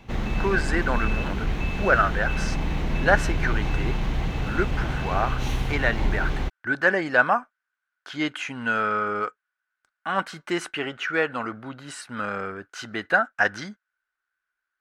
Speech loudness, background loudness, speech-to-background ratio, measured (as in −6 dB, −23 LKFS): −26.0 LKFS, −28.5 LKFS, 2.5 dB